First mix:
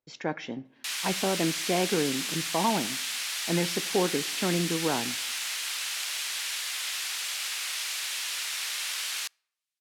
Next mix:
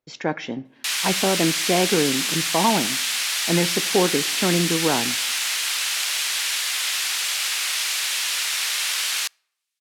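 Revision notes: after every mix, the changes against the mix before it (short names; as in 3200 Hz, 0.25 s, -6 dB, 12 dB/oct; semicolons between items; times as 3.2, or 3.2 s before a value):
speech +6.5 dB; background +8.5 dB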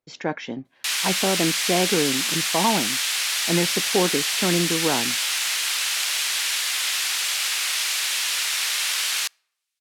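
speech: send off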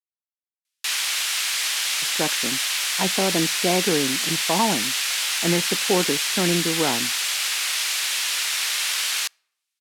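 speech: entry +1.95 s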